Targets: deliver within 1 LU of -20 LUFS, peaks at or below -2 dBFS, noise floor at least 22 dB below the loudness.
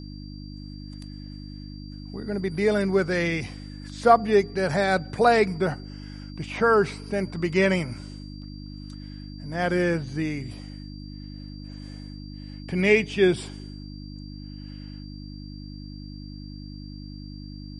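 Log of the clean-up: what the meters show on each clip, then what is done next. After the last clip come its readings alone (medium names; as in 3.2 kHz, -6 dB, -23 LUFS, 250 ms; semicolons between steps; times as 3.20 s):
hum 50 Hz; highest harmonic 300 Hz; hum level -37 dBFS; steady tone 4.7 kHz; tone level -49 dBFS; loudness -23.5 LUFS; peak level -4.0 dBFS; loudness target -20.0 LUFS
-> de-hum 50 Hz, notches 6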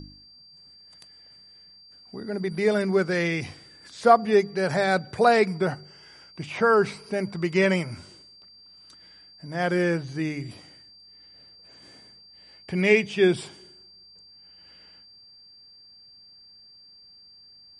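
hum not found; steady tone 4.7 kHz; tone level -49 dBFS
-> band-stop 4.7 kHz, Q 30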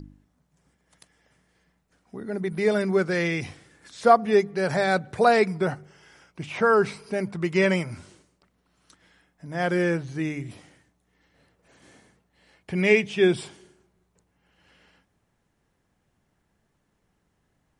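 steady tone not found; loudness -23.5 LUFS; peak level -4.0 dBFS; loudness target -20.0 LUFS
-> trim +3.5 dB; peak limiter -2 dBFS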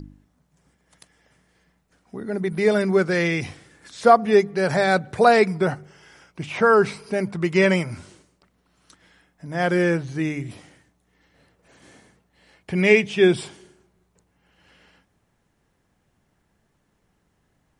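loudness -20.5 LUFS; peak level -2.0 dBFS; noise floor -69 dBFS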